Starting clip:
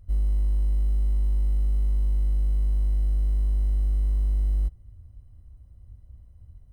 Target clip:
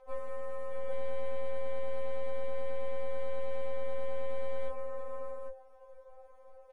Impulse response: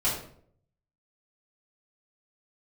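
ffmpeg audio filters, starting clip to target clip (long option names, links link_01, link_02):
-filter_complex "[0:a]highpass=frequency=67:width=0.5412,highpass=frequency=67:width=1.3066,aemphasis=mode=reproduction:type=75fm,asplit=2[link_01][link_02];[link_02]acompressor=threshold=-46dB:ratio=4,volume=-1dB[link_03];[link_01][link_03]amix=inputs=2:normalize=0,afreqshift=490,aecho=1:1:58|64|159|172|624|804:0.335|0.282|0.1|0.224|0.316|0.501,aeval=exprs='(tanh(25.1*val(0)+0.4)-tanh(0.4))/25.1':channel_layout=same,afftfilt=real='re*3.46*eq(mod(b,12),0)':imag='im*3.46*eq(mod(b,12),0)':win_size=2048:overlap=0.75,volume=6.5dB"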